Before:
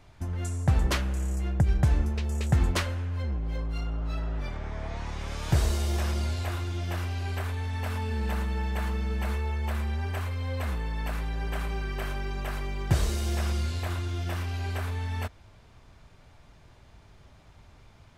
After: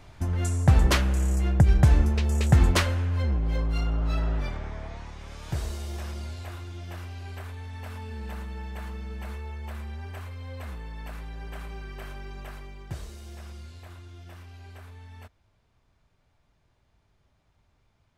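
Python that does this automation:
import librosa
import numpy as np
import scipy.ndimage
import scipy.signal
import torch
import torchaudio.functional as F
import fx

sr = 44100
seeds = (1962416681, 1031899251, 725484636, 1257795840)

y = fx.gain(x, sr, db=fx.line((4.31, 5.0), (5.15, -7.0), (12.42, -7.0), (13.08, -14.0)))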